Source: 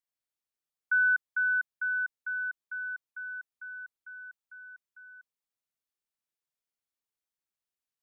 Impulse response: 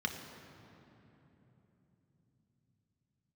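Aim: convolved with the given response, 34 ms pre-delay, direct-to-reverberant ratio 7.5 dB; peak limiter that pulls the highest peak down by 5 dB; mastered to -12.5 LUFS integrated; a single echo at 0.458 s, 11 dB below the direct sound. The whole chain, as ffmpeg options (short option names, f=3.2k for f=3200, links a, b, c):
-filter_complex "[0:a]alimiter=level_in=1.5dB:limit=-24dB:level=0:latency=1,volume=-1.5dB,aecho=1:1:458:0.282,asplit=2[a][b];[1:a]atrim=start_sample=2205,adelay=34[c];[b][c]afir=irnorm=-1:irlink=0,volume=-12dB[d];[a][d]amix=inputs=2:normalize=0,volume=18dB"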